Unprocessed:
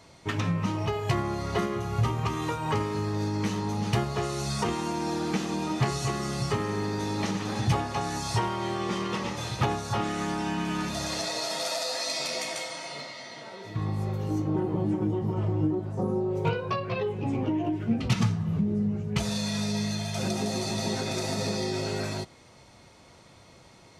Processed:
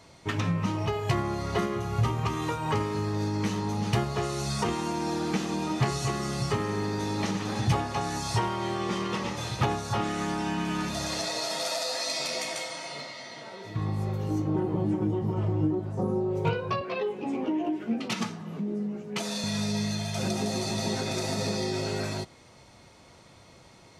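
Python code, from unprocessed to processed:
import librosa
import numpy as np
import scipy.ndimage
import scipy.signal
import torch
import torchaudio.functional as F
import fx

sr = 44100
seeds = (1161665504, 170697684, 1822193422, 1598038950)

y = fx.highpass(x, sr, hz=220.0, slope=24, at=(16.81, 19.44))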